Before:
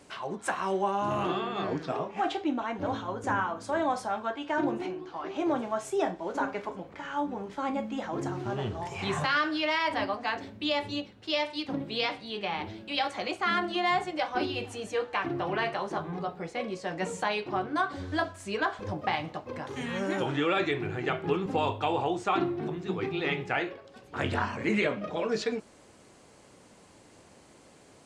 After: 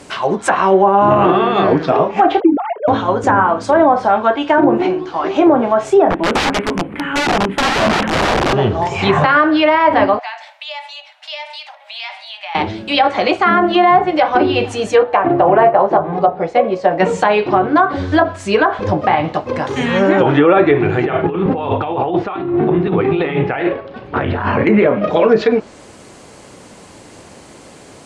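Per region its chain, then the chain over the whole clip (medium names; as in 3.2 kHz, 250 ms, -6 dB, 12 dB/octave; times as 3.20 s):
2.40–2.88 s: formants replaced by sine waves + peaking EQ 1.8 kHz -8.5 dB 2 oct
6.10–8.53 s: FFT filter 110 Hz 0 dB, 250 Hz +10 dB, 600 Hz -5 dB, 2.8 kHz +2 dB, 6 kHz -28 dB, 9.6 kHz +5 dB + integer overflow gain 27.5 dB
10.19–12.55 s: compression 3:1, threshold -40 dBFS + rippled Chebyshev high-pass 600 Hz, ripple 6 dB
15.03–17.00 s: low-pass 3.9 kHz 6 dB/octave + peaking EQ 660 Hz +8 dB 1 oct + upward expansion, over -34 dBFS
21.05–24.67 s: doubling 35 ms -10.5 dB + compressor with a negative ratio -34 dBFS + distance through air 350 m
whole clip: low-pass that closes with the level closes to 1.4 kHz, closed at -23.5 dBFS; dynamic bell 570 Hz, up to +4 dB, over -38 dBFS, Q 0.71; loudness maximiser +17.5 dB; trim -1 dB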